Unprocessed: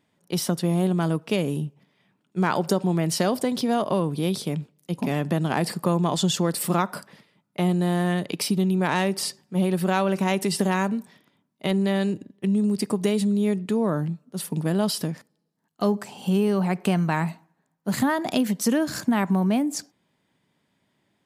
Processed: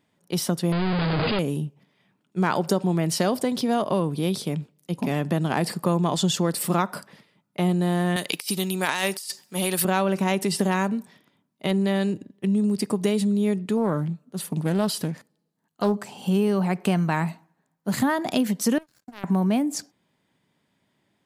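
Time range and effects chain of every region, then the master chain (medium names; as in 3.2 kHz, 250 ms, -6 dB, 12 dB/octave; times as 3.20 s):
0.72–1.39 s: one-bit comparator + brick-wall FIR low-pass 5 kHz
8.16–9.85 s: tilt EQ +4 dB/octave + compressor with a negative ratio -25 dBFS, ratio -0.5
13.77–16.04 s: band-stop 5.3 kHz, Q 11 + loudspeaker Doppler distortion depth 0.2 ms
18.78–19.24 s: compression 1.5:1, threshold -35 dBFS + feedback comb 130 Hz, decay 0.43 s, mix 50% + power-law waveshaper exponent 3
whole clip: none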